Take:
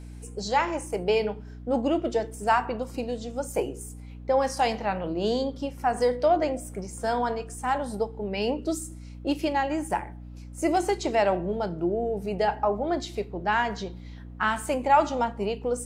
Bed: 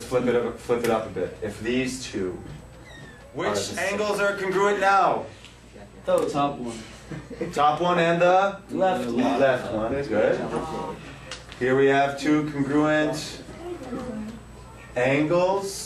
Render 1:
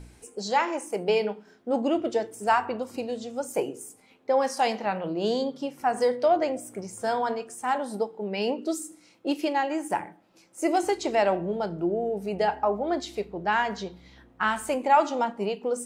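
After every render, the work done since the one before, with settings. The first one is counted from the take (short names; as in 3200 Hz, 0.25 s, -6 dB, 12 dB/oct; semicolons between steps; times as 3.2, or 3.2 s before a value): de-hum 60 Hz, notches 5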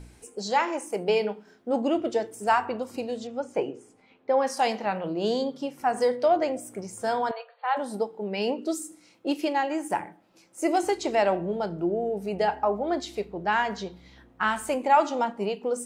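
3.27–4.47 LPF 3500 Hz; 7.31–7.77 brick-wall FIR band-pass 460–4600 Hz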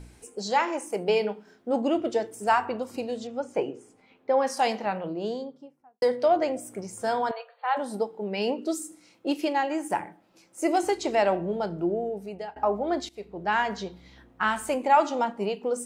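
4.69–6.02 studio fade out; 11.9–12.56 fade out, to -21 dB; 13.09–13.67 fade in equal-power, from -19 dB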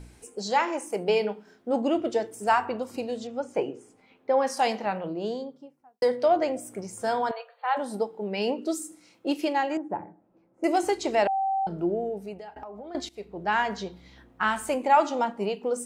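9.77–10.64 Bessel low-pass 640 Hz; 11.27–11.67 bleep 775 Hz -23 dBFS; 12.33–12.95 compressor 10:1, threshold -37 dBFS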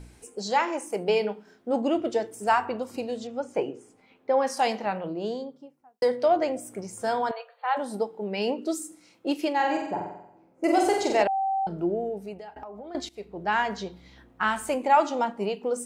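9.55–11.23 flutter echo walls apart 7.9 m, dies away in 0.77 s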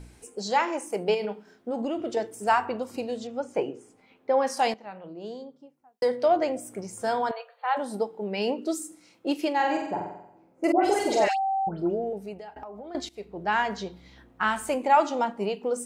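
1.14–2.17 compressor, threshold -25 dBFS; 4.74–6.29 fade in, from -16 dB; 10.72–12.13 dispersion highs, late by 0.125 s, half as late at 1800 Hz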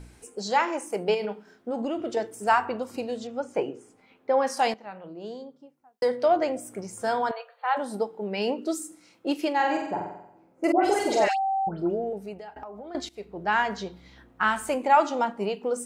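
bell 1400 Hz +2.5 dB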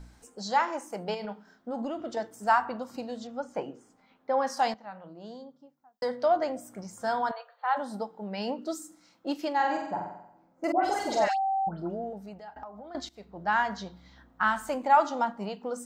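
fifteen-band EQ 100 Hz -9 dB, 400 Hz -12 dB, 2500 Hz -9 dB, 10000 Hz -12 dB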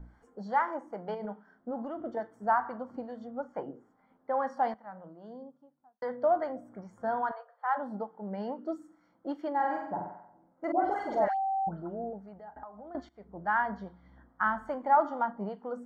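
polynomial smoothing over 41 samples; harmonic tremolo 2.4 Hz, depth 50%, crossover 820 Hz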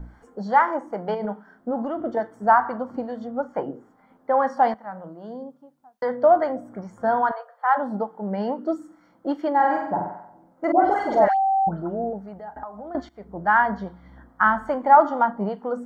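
gain +10 dB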